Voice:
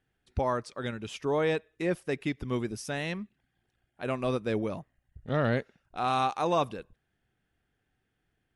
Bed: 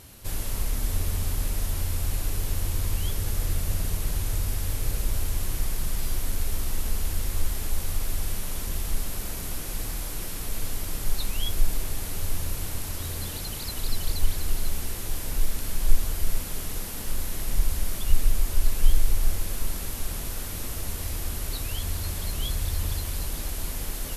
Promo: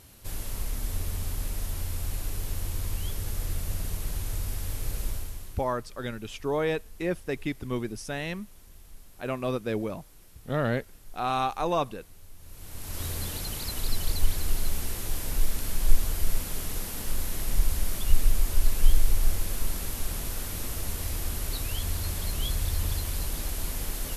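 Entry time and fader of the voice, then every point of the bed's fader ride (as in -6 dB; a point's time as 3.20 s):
5.20 s, 0.0 dB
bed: 5.08 s -4.5 dB
5.77 s -21.5 dB
12.36 s -21.5 dB
13.01 s -0.5 dB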